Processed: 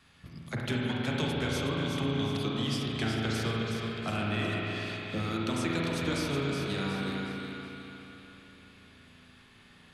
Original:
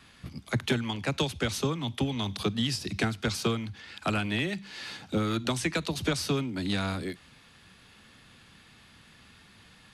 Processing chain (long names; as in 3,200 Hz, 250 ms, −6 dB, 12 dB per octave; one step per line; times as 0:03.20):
feedback echo with a high-pass in the loop 368 ms, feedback 43%, high-pass 420 Hz, level −6 dB
spring reverb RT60 3.4 s, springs 36/48 ms, chirp 35 ms, DRR −3.5 dB
level −7 dB